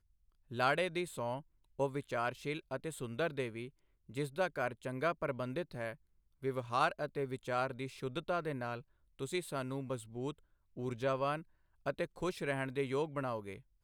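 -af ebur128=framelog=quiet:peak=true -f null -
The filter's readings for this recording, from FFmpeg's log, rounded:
Integrated loudness:
  I:         -38.3 LUFS
  Threshold: -48.6 LUFS
Loudness range:
  LRA:         2.4 LU
  Threshold: -58.9 LUFS
  LRA low:   -40.1 LUFS
  LRA high:  -37.7 LUFS
True peak:
  Peak:      -17.2 dBFS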